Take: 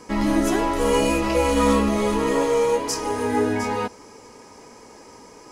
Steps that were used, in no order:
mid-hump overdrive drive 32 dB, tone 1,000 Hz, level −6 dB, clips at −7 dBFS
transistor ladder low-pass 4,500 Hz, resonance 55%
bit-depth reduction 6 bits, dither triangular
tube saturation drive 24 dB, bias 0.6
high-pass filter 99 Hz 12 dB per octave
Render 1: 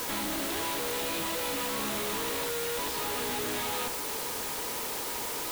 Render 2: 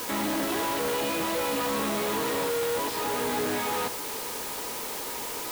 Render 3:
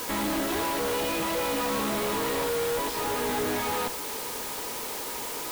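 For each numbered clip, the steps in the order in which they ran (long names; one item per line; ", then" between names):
high-pass filter, then mid-hump overdrive, then tube saturation, then transistor ladder low-pass, then bit-depth reduction
mid-hump overdrive, then transistor ladder low-pass, then tube saturation, then high-pass filter, then bit-depth reduction
high-pass filter, then mid-hump overdrive, then transistor ladder low-pass, then tube saturation, then bit-depth reduction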